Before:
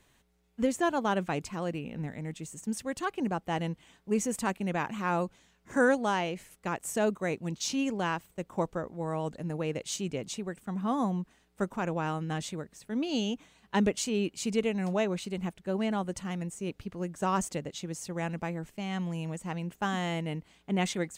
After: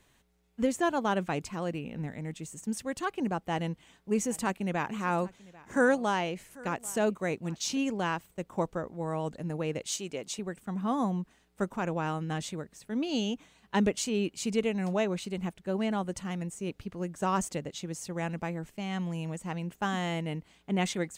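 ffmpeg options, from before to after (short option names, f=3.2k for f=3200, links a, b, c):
-filter_complex "[0:a]asettb=1/sr,asplit=3[a][b][c];[a]atrim=end=3.514[d];[b]atrim=start=3.51:end=7.78,asetpts=PTS-STARTPTS,afade=t=in:d=0.004:c=qsin,afade=t=out:st=4.266:d=0.004:c=qsin,aecho=1:1:792:0.0794,atrim=end_sample=188307[e];[c]atrim=start=7.776[f];[d][e]acrossfade=d=0.004:c1=hsin:c2=qsin[g];[g][f]acrossfade=d=0.004:c1=qsin:c2=hsin,asettb=1/sr,asplit=3[h][i][j];[h]atrim=end=9.864[k];[i]atrim=start=9.86:end=10.39,asetpts=PTS-STARTPTS,afade=t=in:d=0.004:c=qsin,afade=t=out:st=0.526:d=0.004:c=qsin,bass=f=250:g=-11,treble=f=4k:g=2[l];[j]atrim=start=10.386[m];[k][l]acrossfade=d=0.004:c1=hsin:c2=qsin[n];[n][m]acrossfade=d=0.004:c1=qsin:c2=hsin"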